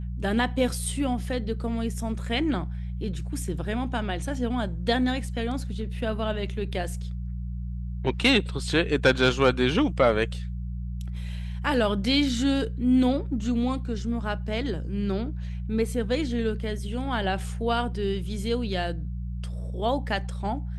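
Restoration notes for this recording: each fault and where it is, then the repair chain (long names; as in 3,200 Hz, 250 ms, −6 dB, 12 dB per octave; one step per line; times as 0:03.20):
mains hum 60 Hz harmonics 3 −32 dBFS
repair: hum removal 60 Hz, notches 3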